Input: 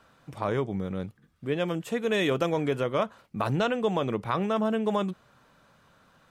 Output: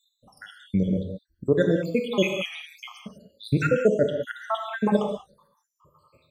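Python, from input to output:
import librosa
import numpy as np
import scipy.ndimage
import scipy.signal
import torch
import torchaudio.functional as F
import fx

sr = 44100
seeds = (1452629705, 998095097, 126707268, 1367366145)

y = fx.spec_dropout(x, sr, seeds[0], share_pct=84)
y = fx.noise_reduce_blind(y, sr, reduce_db=19)
y = fx.rev_gated(y, sr, seeds[1], gate_ms=220, shape='flat', drr_db=3.5)
y = y * 10.0 ** (8.5 / 20.0)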